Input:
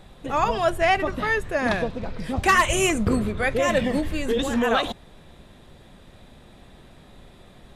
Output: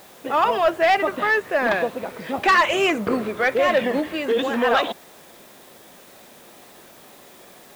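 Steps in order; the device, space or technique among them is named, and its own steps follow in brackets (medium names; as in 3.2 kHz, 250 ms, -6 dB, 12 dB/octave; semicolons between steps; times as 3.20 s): tape answering machine (band-pass 340–3200 Hz; saturation -15.5 dBFS, distortion -15 dB; wow and flutter; white noise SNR 28 dB); trim +5.5 dB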